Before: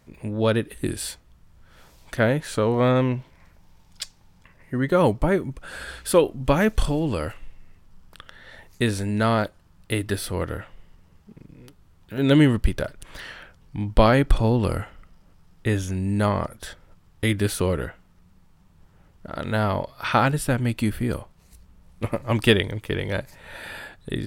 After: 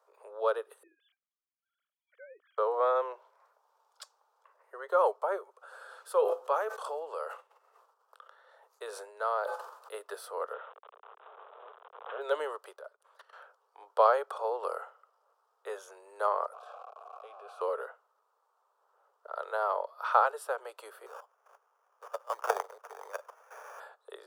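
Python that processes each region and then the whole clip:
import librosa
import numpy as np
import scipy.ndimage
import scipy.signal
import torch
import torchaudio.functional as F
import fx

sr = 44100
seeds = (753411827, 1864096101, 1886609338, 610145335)

y = fx.chain(x, sr, fx.sine_speech(),
    fx.vowel_filter(vowel='i'), at=(0.83, 2.58))
y = fx.chain(y, sr, fx.comb_fb(f0_hz=170.0, decay_s=0.39, harmonics='odd', damping=0.0, mix_pct=40),
    fx.sustainer(db_per_s=21.0), at=(5.56, 9.94))
y = fx.chain(y, sr, fx.delta_mod(bps=64000, step_db=-34.0),
    fx.resample_bad(factor=6, down='none', up='filtered'),
    fx.pre_swell(db_per_s=60.0), at=(10.53, 12.21))
y = fx.chain(y, sr, fx.highpass(hz=100.0, slope=12),
    fx.level_steps(step_db=19), at=(12.74, 13.33))
y = fx.chain(y, sr, fx.zero_step(step_db=-26.0),
    fx.vowel_filter(vowel='a'),
    fx.env_flatten(amount_pct=50), at=(16.53, 17.61))
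y = fx.chain(y, sr, fx.riaa(side='recording'),
    fx.level_steps(step_db=13),
    fx.sample_hold(seeds[0], rate_hz=4100.0, jitter_pct=0), at=(21.06, 23.8))
y = scipy.signal.sosfilt(scipy.signal.butter(12, 430.0, 'highpass', fs=sr, output='sos'), y)
y = fx.high_shelf_res(y, sr, hz=1600.0, db=-8.5, q=3.0)
y = y * 10.0 ** (-7.0 / 20.0)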